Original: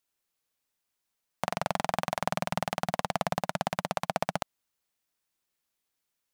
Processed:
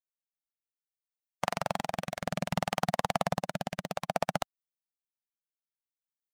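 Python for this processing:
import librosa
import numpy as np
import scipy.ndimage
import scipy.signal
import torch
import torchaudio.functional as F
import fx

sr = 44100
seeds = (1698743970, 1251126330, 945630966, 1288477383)

y = fx.bin_expand(x, sr, power=1.5)
y = fx.rotary(y, sr, hz=0.6)
y = y * 10.0 ** (4.0 / 20.0)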